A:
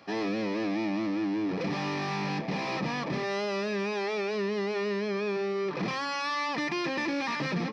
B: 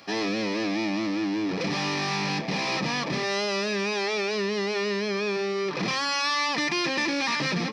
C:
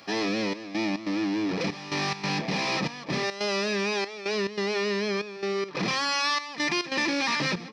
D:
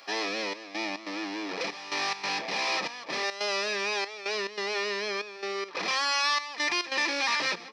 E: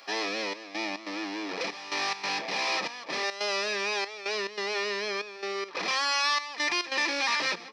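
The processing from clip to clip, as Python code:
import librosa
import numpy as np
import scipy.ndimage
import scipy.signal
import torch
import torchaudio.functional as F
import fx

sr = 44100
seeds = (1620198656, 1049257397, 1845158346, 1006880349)

y1 = fx.high_shelf(x, sr, hz=3000.0, db=12.0)
y1 = y1 * librosa.db_to_amplitude(2.0)
y2 = fx.step_gate(y1, sr, bpm=141, pattern='xxxxx..xx.x', floor_db=-12.0, edge_ms=4.5)
y3 = scipy.signal.sosfilt(scipy.signal.butter(2, 520.0, 'highpass', fs=sr, output='sos'), y2)
y4 = scipy.signal.sosfilt(scipy.signal.butter(2, 120.0, 'highpass', fs=sr, output='sos'), y3)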